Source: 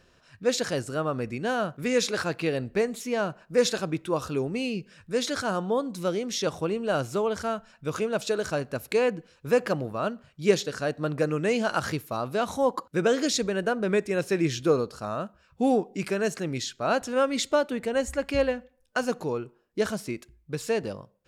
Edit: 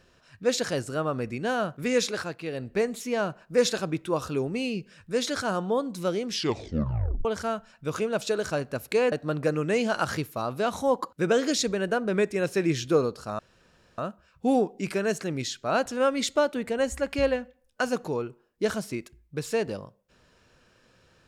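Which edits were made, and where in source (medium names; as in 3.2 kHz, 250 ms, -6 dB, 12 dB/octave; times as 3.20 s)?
1.98–2.84 s: dip -8 dB, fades 0.40 s
6.26 s: tape stop 0.99 s
9.12–10.87 s: delete
15.14 s: insert room tone 0.59 s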